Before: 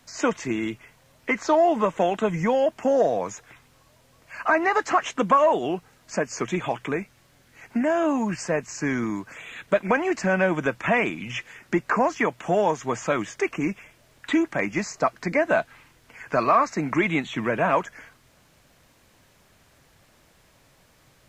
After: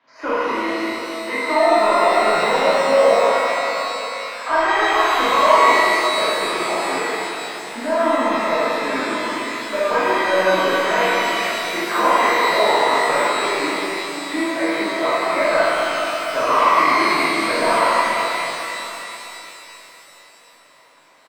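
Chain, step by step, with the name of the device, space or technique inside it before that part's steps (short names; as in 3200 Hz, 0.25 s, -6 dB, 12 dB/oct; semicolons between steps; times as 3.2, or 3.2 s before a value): intercom (BPF 420–4200 Hz; bell 1000 Hz +8 dB 0.24 oct; soft clip -13 dBFS, distortion -16 dB; doubler 42 ms -6.5 dB); 15.09–15.56 steep low-pass 2600 Hz 72 dB/oct; air absorption 210 m; shimmer reverb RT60 3.6 s, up +12 st, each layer -8 dB, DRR -11 dB; gain -4 dB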